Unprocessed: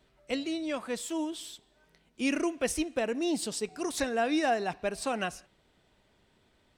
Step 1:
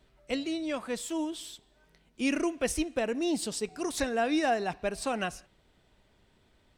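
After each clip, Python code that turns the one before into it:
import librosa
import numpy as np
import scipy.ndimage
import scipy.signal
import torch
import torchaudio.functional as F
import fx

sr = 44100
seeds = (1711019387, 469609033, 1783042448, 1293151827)

y = fx.low_shelf(x, sr, hz=82.0, db=7.5)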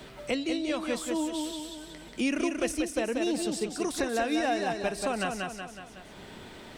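y = fx.echo_feedback(x, sr, ms=185, feedback_pct=34, wet_db=-5.5)
y = fx.band_squash(y, sr, depth_pct=70)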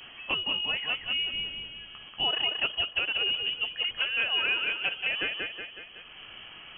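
y = fx.vibrato(x, sr, rate_hz=0.45, depth_cents=20.0)
y = fx.freq_invert(y, sr, carrier_hz=3200)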